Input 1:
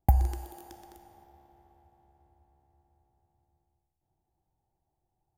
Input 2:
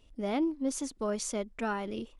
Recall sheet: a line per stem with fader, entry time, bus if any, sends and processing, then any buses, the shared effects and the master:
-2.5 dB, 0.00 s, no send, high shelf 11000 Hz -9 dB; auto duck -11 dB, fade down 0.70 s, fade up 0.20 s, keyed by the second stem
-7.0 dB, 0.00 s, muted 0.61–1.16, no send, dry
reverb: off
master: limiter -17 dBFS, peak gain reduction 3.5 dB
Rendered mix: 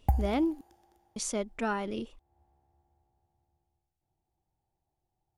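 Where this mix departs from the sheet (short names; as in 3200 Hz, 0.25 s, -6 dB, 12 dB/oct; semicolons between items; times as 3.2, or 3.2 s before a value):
stem 2 -7.0 dB -> +1.5 dB; master: missing limiter -17 dBFS, peak gain reduction 3.5 dB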